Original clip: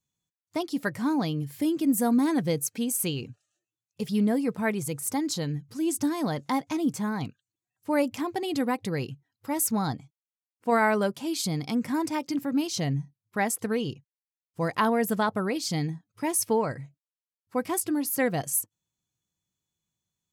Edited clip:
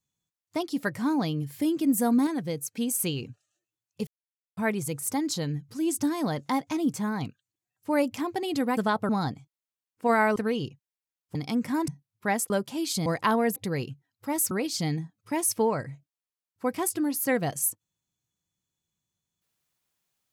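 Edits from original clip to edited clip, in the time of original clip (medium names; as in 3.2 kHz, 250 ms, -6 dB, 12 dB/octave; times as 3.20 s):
2.27–2.77 s: gain -5 dB
4.07–4.57 s: mute
8.77–9.72 s: swap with 15.10–15.42 s
10.99–11.55 s: swap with 13.61–14.60 s
12.08–12.99 s: delete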